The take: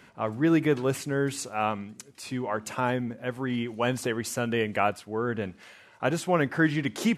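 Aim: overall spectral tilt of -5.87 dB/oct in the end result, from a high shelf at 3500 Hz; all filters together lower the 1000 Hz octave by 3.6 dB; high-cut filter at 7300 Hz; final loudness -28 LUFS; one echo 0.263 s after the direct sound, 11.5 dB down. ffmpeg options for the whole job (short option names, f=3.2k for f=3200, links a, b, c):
-af "lowpass=7.3k,equalizer=f=1k:t=o:g=-4.5,highshelf=f=3.5k:g=-7,aecho=1:1:263:0.266,volume=1dB"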